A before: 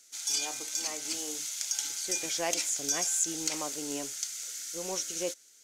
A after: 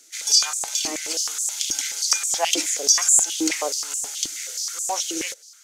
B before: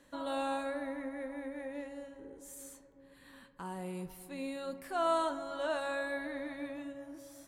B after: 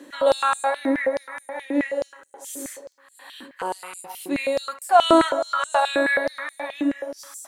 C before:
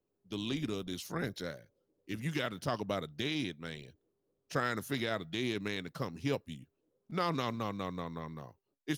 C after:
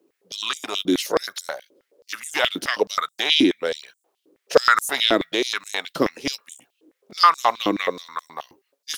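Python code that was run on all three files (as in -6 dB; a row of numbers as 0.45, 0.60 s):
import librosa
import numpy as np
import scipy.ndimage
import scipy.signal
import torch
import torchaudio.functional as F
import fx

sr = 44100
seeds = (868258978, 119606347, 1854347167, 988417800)

y = fx.filter_held_highpass(x, sr, hz=9.4, low_hz=310.0, high_hz=7800.0)
y = y * 10.0 ** (-24 / 20.0) / np.sqrt(np.mean(np.square(y)))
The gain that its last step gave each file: +6.5, +13.5, +14.5 dB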